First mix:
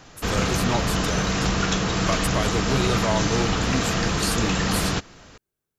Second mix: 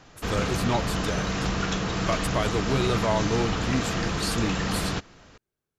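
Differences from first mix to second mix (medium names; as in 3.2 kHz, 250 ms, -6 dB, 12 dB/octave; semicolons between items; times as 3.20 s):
background -4.0 dB; master: add treble shelf 7.3 kHz -8.5 dB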